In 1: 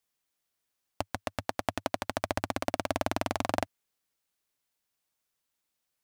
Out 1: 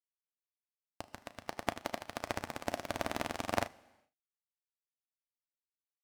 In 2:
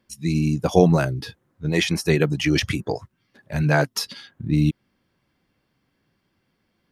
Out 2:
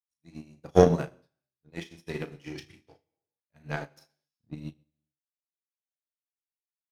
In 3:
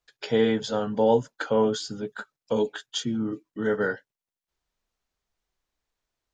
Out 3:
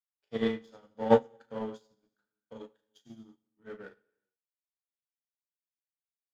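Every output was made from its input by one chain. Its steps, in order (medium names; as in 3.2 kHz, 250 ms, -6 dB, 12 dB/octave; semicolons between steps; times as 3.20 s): early reflections 35 ms -5 dB, 77 ms -11 dB; power-law waveshaper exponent 1.4; gated-style reverb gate 440 ms falling, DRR 7 dB; upward expansion 2.5:1, over -40 dBFS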